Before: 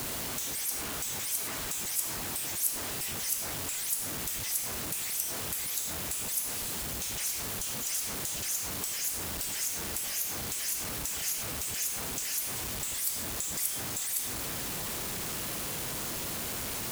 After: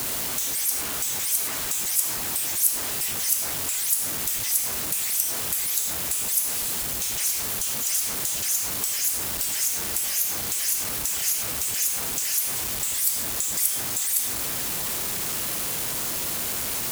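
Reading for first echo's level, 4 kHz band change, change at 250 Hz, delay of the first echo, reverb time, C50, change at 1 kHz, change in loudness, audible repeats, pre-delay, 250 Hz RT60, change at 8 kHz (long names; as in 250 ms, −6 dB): no echo audible, +6.5 dB, +2.0 dB, no echo audible, no reverb audible, no reverb audible, +4.5 dB, +8.0 dB, no echo audible, no reverb audible, no reverb audible, +8.0 dB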